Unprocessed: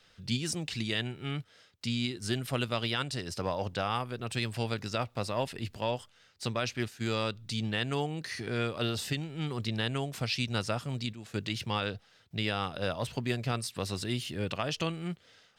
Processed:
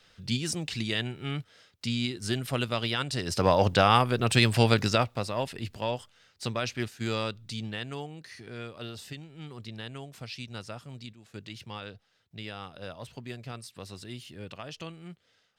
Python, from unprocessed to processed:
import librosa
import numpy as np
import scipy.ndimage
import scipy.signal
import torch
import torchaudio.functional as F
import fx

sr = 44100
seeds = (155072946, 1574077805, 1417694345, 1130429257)

y = fx.gain(x, sr, db=fx.line((3.04, 2.0), (3.53, 11.0), (4.85, 11.0), (5.25, 1.0), (7.15, 1.0), (8.27, -8.5)))